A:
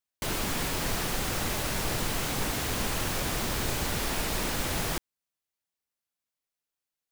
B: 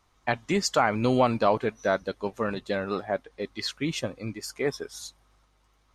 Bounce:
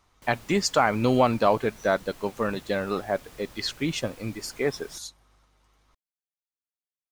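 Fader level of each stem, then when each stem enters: -19.5, +1.5 dB; 0.00, 0.00 s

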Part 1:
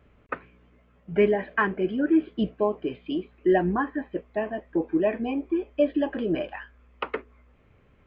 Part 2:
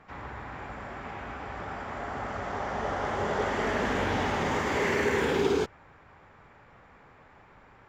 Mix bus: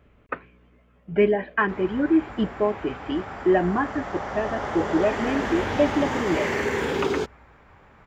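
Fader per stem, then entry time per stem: +1.5, +1.0 dB; 0.00, 1.60 s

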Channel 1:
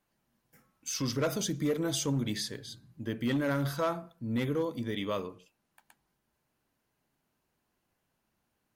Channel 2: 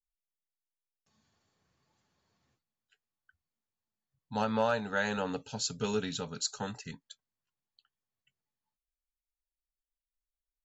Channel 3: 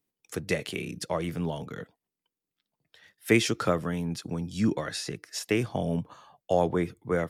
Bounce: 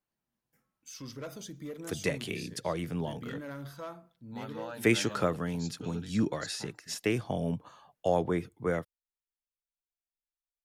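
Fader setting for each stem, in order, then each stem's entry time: -11.5, -13.0, -3.0 dB; 0.00, 0.00, 1.55 s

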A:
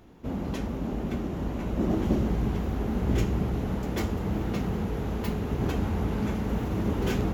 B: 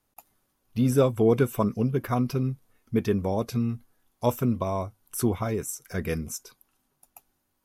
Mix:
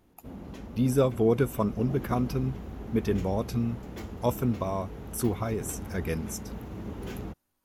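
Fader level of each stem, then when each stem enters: -10.5, -2.5 dB; 0.00, 0.00 s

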